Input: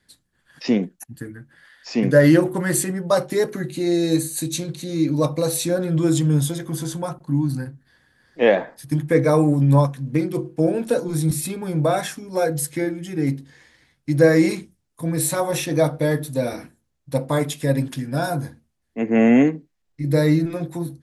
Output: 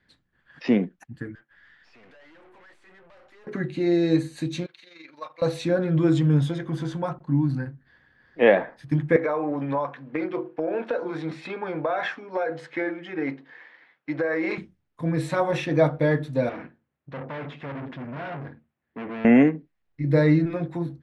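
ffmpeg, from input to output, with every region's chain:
-filter_complex "[0:a]asettb=1/sr,asplit=3[s0][s1][s2];[s0]atrim=end=1.354[s3];[s1]atrim=start=1.35:end=3.47,asetpts=PTS-STARTPTS,afade=t=in:d=0.004:c=qsin,afade=t=out:st=2.116:d=0.004:c=qsin,highpass=720,acompressor=threshold=0.0126:ratio=3:attack=3.2:release=140:knee=1:detection=peak,aeval=exprs='(tanh(355*val(0)+0.55)-tanh(0.55))/355':c=same[s4];[s2]atrim=start=3.466[s5];[s3][s4]acrossfade=d=0.004:c1=hsin:c2=qsin[s6];[s6][s5]acrossfade=d=0.004:c1=qsin:c2=hsin,asettb=1/sr,asplit=3[s7][s8][s9];[s7]atrim=end=4.664[s10];[s8]atrim=start=4.66:end=5.42,asetpts=PTS-STARTPTS,afade=t=in:d=0.004:c=qsin,afade=t=out:st=0.756:d=0.004:c=qsin,highpass=1400,equalizer=f=8300:w=0.8:g=-9,tremolo=f=23:d=0.571[s11];[s9]atrim=start=5.416[s12];[s10][s11]acrossfade=d=0.004:c1=hsin:c2=qsin[s13];[s13][s12]acrossfade=d=0.004:c1=qsin:c2=hsin,asettb=1/sr,asplit=3[s14][s15][s16];[s14]atrim=end=9.164[s17];[s15]atrim=start=9.16:end=14.58,asetpts=PTS-STARTPTS,afade=t=in:d=0.004:c=qsin,afade=t=out:st=5.416:d=0.004:c=qsin,highpass=370,lowpass=4500,equalizer=f=1100:t=o:w=2.5:g=6,acompressor=threshold=0.1:ratio=12:attack=3.2:release=140:knee=1:detection=peak[s18];[s16]atrim=start=14.576[s19];[s17][s18]acrossfade=d=0.004:c1=hsin:c2=qsin[s20];[s20][s19]acrossfade=d=0.004:c1=qsin:c2=hsin,asettb=1/sr,asplit=3[s21][s22][s23];[s21]atrim=end=16.494[s24];[s22]atrim=start=16.49:end=19.25,asetpts=PTS-STARTPTS,afade=t=in:d=0.004:c=qsin,afade=t=out:st=2.756:d=0.004:c=qsin,acontrast=30,aeval=exprs='(tanh(35.5*val(0)+0.6)-tanh(0.6))/35.5':c=same,highpass=120,lowpass=2800[s25];[s23]atrim=start=19.246[s26];[s24][s25]acrossfade=d=0.004:c1=hsin:c2=qsin[s27];[s27][s26]acrossfade=d=0.004:c1=qsin:c2=hsin,lowpass=2800,equalizer=f=1900:t=o:w=1.7:g=3,volume=0.841"

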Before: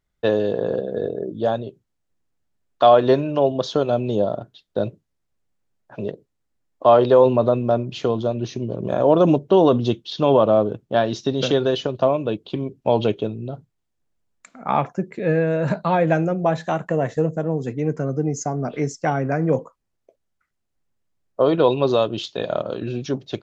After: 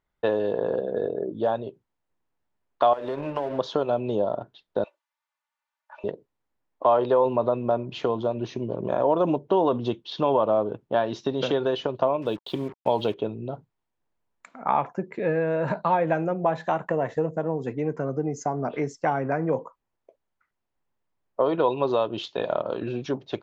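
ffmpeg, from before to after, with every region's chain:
-filter_complex "[0:a]asettb=1/sr,asplit=3[s0][s1][s2];[s0]atrim=end=2.934[s3];[s1]atrim=start=2.93:end=3.59,asetpts=PTS-STARTPTS,afade=t=in:d=0.004:c=qsin,afade=t=out:st=0.656:d=0.004:c=qsin,bandreject=f=60:t=h:w=6,bandreject=f=120:t=h:w=6,bandreject=f=180:t=h:w=6,bandreject=f=240:t=h:w=6,bandreject=f=300:t=h:w=6,bandreject=f=360:t=h:w=6,bandreject=f=420:t=h:w=6,bandreject=f=480:t=h:w=6,bandreject=f=540:t=h:w=6,bandreject=f=600:t=h:w=6,acompressor=threshold=0.0891:ratio=10:attack=3.2:release=140:knee=1:detection=peak,aeval=exprs='sgn(val(0))*max(abs(val(0))-0.0106,0)':c=same[s4];[s2]atrim=start=3.586[s5];[s3][s4]acrossfade=d=0.004:c1=hsin:c2=qsin[s6];[s6][s5]acrossfade=d=0.004:c1=qsin:c2=hsin,asettb=1/sr,asplit=3[s7][s8][s9];[s7]atrim=end=4.844[s10];[s8]atrim=start=4.84:end=6.04,asetpts=PTS-STARTPTS,afade=t=in:d=0.004:c=qsin,afade=t=out:st=1.196:d=0.004:c=qsin,highpass=f=900:w=0.5412,highpass=f=900:w=1.3066,acompressor=threshold=0.00501:ratio=6:attack=3.2:release=140:knee=1:detection=peak,aecho=1:1:3.4:0.98,atrim=end_sample=52920[s11];[s9]atrim=start=6.036[s12];[s10][s11]acrossfade=d=0.004:c1=hsin:c2=qsin[s13];[s13][s12]acrossfade=d=0.004:c1=qsin:c2=hsin,asettb=1/sr,asplit=3[s14][s15][s16];[s14]atrim=end=12.224[s17];[s15]atrim=start=12.22:end=13.14,asetpts=PTS-STARTPTS,afade=t=in:d=0.004:c=qsin,afade=t=out:st=0.916:d=0.004:c=qsin,highshelf=f=3000:t=q:w=1.5:g=7,acrusher=bits=6:mix=0:aa=0.5[s18];[s16]atrim=start=13.136[s19];[s17][s18]acrossfade=d=0.004:c1=hsin:c2=qsin[s20];[s20][s19]acrossfade=d=0.004:c1=qsin:c2=hsin,equalizer=f=940:w=3.5:g=6.5,acompressor=threshold=0.0794:ratio=2,bass=f=250:g=-6,treble=f=4000:g=-11"

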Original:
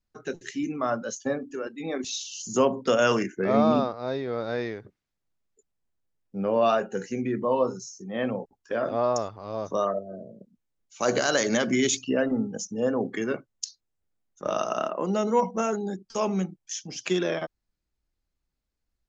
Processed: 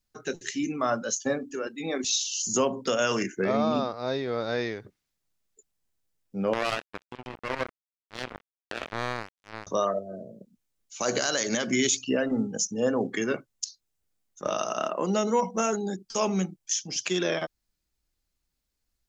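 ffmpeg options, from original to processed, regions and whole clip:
-filter_complex "[0:a]asettb=1/sr,asplit=3[s0][s1][s2];[s0]atrim=end=6.534[s3];[s1]atrim=start=6.53:end=9.67,asetpts=PTS-STARTPTS,afade=t=in:d=0.004:c=qsin,afade=t=out:st=3.136:d=0.004:c=qsin,lowpass=f=3200:w=0.5412,lowpass=f=3200:w=1.3066,acompressor=threshold=0.0316:ratio=2:attack=3.2:release=140:knee=1:detection=peak,acrusher=bits=3:mix=0:aa=0.5[s4];[s2]atrim=start=9.666[s5];[s3][s4]acrossfade=d=0.004:c1=hsin:c2=qsin[s6];[s6][s5]acrossfade=d=0.004:c1=qsin:c2=hsin,highshelf=f=2800:g=9,alimiter=limit=0.188:level=0:latency=1:release=203"

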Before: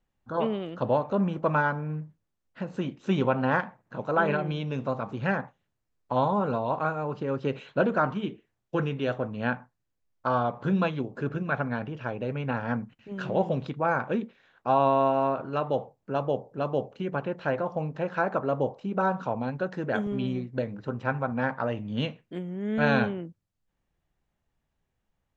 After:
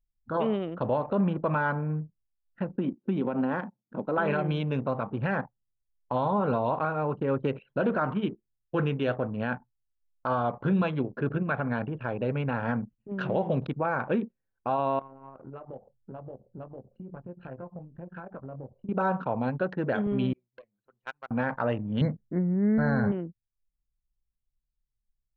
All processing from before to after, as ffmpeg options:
-filter_complex "[0:a]asettb=1/sr,asplit=3[s0][s1][s2];[s0]atrim=end=2.724[s3];[s1]atrim=start=2.72:end=4.18,asetpts=PTS-STARTPTS,afade=t=in:d=0.004:c=qsin,afade=t=out:st=1.456:d=0.004:c=qsin,equalizer=f=1800:w=0.32:g=-5.5,acompressor=threshold=0.0447:ratio=10:attack=3.2:release=140:knee=1:detection=peak,highpass=f=220:t=q:w=1.6[s4];[s2]atrim=start=4.176[s5];[s3][s4]acrossfade=d=0.004:c1=hsin:c2=qsin[s6];[s6][s5]acrossfade=d=0.004:c1=qsin:c2=hsin,asettb=1/sr,asplit=3[s7][s8][s9];[s7]atrim=end=14.994[s10];[s8]atrim=start=14.99:end=18.89,asetpts=PTS-STARTPTS,afade=t=in:d=0.004:c=qsin,afade=t=out:st=3.896:d=0.004:c=qsin,asubboost=boost=2.5:cutoff=230,acompressor=threshold=0.00891:ratio=6:attack=3.2:release=140:knee=1:detection=peak,asplit=2[s11][s12];[s12]adelay=23,volume=0.501[s13];[s11][s13]amix=inputs=2:normalize=0,atrim=end_sample=171990[s14];[s9]atrim=start=18.886[s15];[s10][s14]acrossfade=d=0.004:c1=hsin:c2=qsin[s16];[s16][s15]acrossfade=d=0.004:c1=qsin:c2=hsin,asettb=1/sr,asplit=3[s17][s18][s19];[s17]atrim=end=20.334[s20];[s18]atrim=start=20.33:end=21.31,asetpts=PTS-STARTPTS,afade=t=in:d=0.004:c=qsin,afade=t=out:st=0.976:d=0.004:c=qsin,aeval=exprs='if(lt(val(0),0),0.447*val(0),val(0))':c=same,acontrast=46,aderivative[s21];[s19]atrim=start=21.306[s22];[s20][s21]acrossfade=d=0.004:c1=hsin:c2=qsin[s23];[s23][s22]acrossfade=d=0.004:c1=qsin:c2=hsin,asettb=1/sr,asplit=3[s24][s25][s26];[s24]atrim=end=22.014[s27];[s25]atrim=start=22.01:end=23.12,asetpts=PTS-STARTPTS,afade=t=in:d=0.004:c=qsin,afade=t=out:st=1.106:d=0.004:c=qsin,asuperstop=centerf=3000:order=20:qfactor=1.6,bass=f=250:g=9,treble=f=4000:g=-2[s28];[s26]atrim=start=23.116[s29];[s27][s28]acrossfade=d=0.004:c1=hsin:c2=qsin[s30];[s30][s29]acrossfade=d=0.004:c1=qsin:c2=hsin,lowpass=4000,anlmdn=0.398,alimiter=limit=0.106:level=0:latency=1:release=63,volume=1.33"

